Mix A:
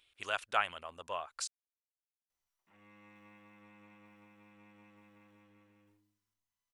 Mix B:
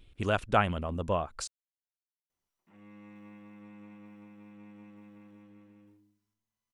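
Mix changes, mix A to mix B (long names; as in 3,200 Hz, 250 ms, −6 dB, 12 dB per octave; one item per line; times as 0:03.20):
speech: remove high-pass filter 1,100 Hz 6 dB per octave
master: add parametric band 210 Hz +12.5 dB 2.5 octaves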